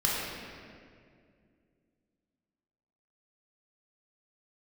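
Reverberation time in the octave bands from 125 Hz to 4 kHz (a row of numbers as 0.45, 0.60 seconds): 3.0, 3.1, 2.5, 1.9, 1.9, 1.5 seconds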